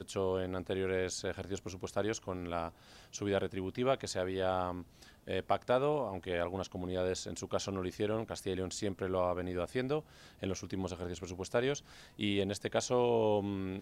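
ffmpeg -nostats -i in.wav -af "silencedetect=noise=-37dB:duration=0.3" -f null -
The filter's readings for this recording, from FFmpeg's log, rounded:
silence_start: 2.68
silence_end: 3.15 | silence_duration: 0.47
silence_start: 4.82
silence_end: 5.28 | silence_duration: 0.46
silence_start: 10.00
silence_end: 10.43 | silence_duration: 0.43
silence_start: 11.78
silence_end: 12.19 | silence_duration: 0.42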